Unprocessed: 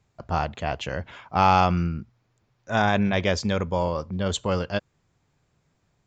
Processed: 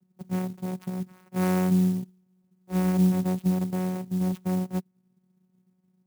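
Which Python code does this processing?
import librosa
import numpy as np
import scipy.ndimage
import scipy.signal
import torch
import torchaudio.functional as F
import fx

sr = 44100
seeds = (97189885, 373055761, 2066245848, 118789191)

y = fx.bass_treble(x, sr, bass_db=11, treble_db=-7)
y = fx.vocoder(y, sr, bands=4, carrier='saw', carrier_hz=184.0)
y = fx.clock_jitter(y, sr, seeds[0], jitter_ms=0.051)
y = F.gain(torch.from_numpy(y), -5.5).numpy()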